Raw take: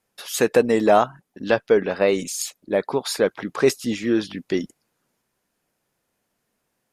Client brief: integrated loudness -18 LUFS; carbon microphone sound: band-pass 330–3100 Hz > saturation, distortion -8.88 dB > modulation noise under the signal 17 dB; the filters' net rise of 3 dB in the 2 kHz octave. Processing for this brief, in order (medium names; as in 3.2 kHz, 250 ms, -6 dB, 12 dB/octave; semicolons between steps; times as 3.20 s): band-pass 330–3100 Hz; peaking EQ 2 kHz +4.5 dB; saturation -17 dBFS; modulation noise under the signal 17 dB; trim +8.5 dB